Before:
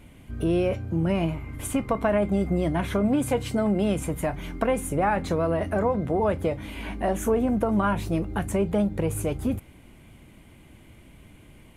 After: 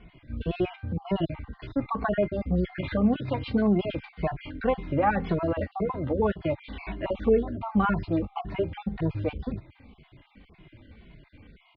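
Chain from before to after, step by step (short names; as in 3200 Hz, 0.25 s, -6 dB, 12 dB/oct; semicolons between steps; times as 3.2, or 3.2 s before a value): random spectral dropouts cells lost 37%; steep low-pass 4600 Hz 72 dB/oct; endless flanger 2.3 ms -1.9 Hz; gain +2.5 dB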